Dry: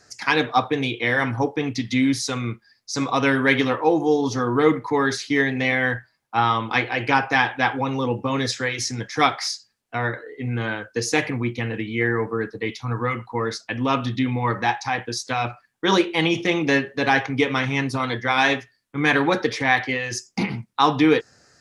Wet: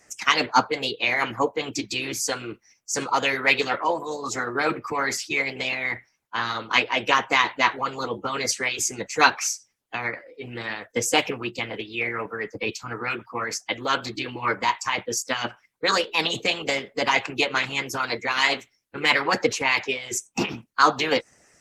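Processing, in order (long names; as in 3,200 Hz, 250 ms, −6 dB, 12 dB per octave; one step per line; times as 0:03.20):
harmonic and percussive parts rebalanced harmonic −17 dB
formants moved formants +3 semitones
level +3 dB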